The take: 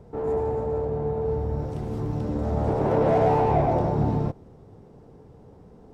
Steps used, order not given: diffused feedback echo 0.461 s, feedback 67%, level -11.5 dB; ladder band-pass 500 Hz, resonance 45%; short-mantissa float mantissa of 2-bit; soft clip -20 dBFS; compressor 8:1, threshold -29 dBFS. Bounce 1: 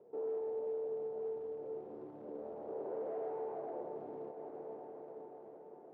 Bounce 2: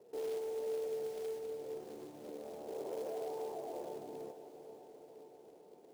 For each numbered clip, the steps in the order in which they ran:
soft clip > diffused feedback echo > short-mantissa float > compressor > ladder band-pass; compressor > soft clip > ladder band-pass > short-mantissa float > diffused feedback echo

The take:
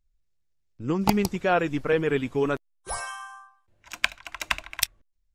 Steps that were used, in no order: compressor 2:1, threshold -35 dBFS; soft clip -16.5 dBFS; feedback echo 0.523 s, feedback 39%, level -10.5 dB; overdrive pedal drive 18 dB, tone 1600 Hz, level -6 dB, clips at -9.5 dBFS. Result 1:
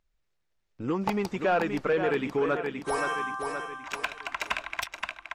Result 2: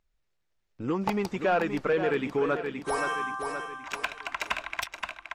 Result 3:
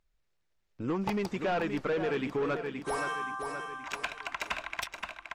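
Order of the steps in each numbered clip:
feedback echo > soft clip > compressor > overdrive pedal; soft clip > feedback echo > compressor > overdrive pedal; overdrive pedal > feedback echo > soft clip > compressor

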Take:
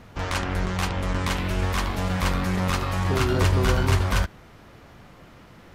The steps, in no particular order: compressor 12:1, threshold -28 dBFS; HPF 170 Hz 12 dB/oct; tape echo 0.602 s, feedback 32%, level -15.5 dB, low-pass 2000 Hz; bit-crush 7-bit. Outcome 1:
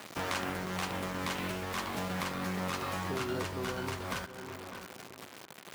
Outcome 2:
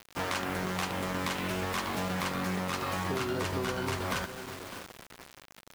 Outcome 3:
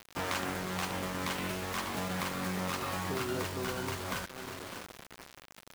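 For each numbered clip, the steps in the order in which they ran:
bit-crush > tape echo > compressor > HPF; HPF > tape echo > bit-crush > compressor; tape echo > compressor > HPF > bit-crush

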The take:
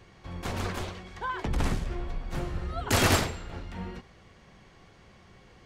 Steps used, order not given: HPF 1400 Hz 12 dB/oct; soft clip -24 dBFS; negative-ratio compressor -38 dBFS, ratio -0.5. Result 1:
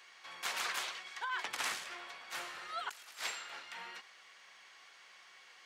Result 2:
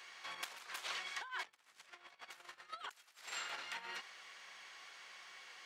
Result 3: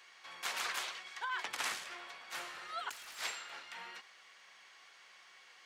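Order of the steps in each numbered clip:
HPF > negative-ratio compressor > soft clip; negative-ratio compressor > HPF > soft clip; HPF > soft clip > negative-ratio compressor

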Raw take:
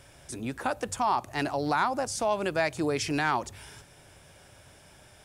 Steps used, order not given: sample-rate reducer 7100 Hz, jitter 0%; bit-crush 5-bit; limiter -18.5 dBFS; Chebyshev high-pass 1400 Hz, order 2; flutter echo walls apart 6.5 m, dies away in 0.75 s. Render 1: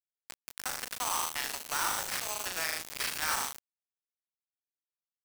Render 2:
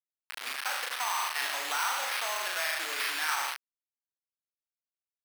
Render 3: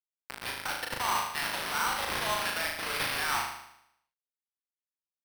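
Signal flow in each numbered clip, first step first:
flutter echo > limiter > sample-rate reducer > Chebyshev high-pass > bit-crush; flutter echo > sample-rate reducer > limiter > bit-crush > Chebyshev high-pass; bit-crush > limiter > Chebyshev high-pass > sample-rate reducer > flutter echo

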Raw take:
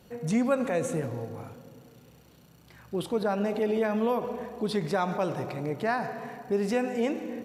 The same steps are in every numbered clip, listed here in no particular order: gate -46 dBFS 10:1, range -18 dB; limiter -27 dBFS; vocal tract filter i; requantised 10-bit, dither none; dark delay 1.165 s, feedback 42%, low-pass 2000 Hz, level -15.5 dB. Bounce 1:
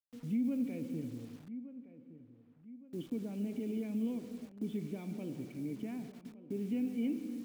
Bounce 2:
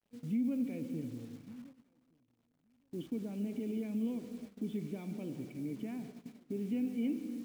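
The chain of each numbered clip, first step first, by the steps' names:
vocal tract filter > gate > requantised > dark delay > limiter; vocal tract filter > requantised > limiter > dark delay > gate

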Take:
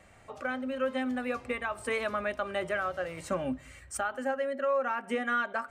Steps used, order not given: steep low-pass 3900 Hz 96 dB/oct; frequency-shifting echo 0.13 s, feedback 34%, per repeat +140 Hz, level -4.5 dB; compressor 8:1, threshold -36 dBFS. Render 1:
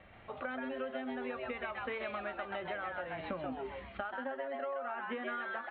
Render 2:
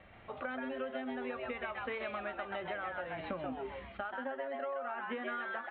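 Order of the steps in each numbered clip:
steep low-pass > frequency-shifting echo > compressor; frequency-shifting echo > compressor > steep low-pass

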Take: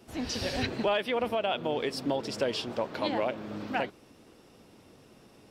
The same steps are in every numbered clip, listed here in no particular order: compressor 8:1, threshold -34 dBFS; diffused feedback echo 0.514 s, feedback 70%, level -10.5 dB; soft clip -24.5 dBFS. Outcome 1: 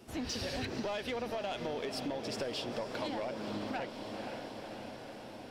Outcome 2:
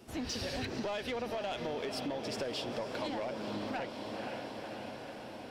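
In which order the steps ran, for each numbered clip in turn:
soft clip > diffused feedback echo > compressor; diffused feedback echo > soft clip > compressor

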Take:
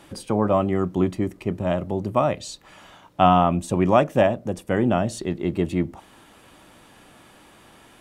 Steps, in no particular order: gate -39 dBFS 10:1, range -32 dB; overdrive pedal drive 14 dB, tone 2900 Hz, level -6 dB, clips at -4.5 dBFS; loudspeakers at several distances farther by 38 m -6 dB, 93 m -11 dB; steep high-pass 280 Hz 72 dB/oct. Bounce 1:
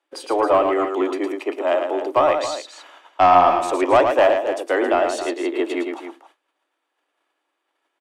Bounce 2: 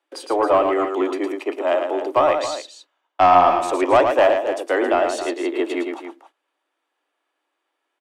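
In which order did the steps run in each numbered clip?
steep high-pass > overdrive pedal > gate > loudspeakers at several distances; gate > steep high-pass > overdrive pedal > loudspeakers at several distances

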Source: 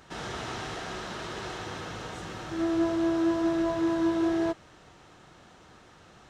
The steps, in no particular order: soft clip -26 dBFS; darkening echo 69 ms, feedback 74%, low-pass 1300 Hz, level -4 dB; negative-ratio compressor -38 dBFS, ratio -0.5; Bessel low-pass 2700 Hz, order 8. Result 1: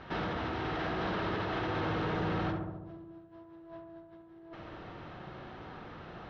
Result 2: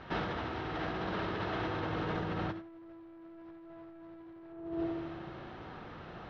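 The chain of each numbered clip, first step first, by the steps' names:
negative-ratio compressor > darkening echo > soft clip > Bessel low-pass; darkening echo > soft clip > negative-ratio compressor > Bessel low-pass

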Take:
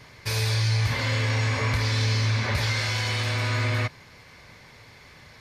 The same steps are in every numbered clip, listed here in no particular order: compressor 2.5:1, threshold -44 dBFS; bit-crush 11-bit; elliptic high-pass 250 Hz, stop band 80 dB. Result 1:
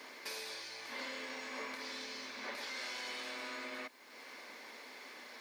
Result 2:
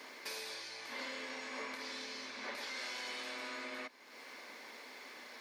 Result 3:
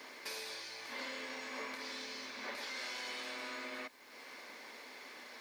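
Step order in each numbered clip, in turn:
compressor > bit-crush > elliptic high-pass; bit-crush > compressor > elliptic high-pass; compressor > elliptic high-pass > bit-crush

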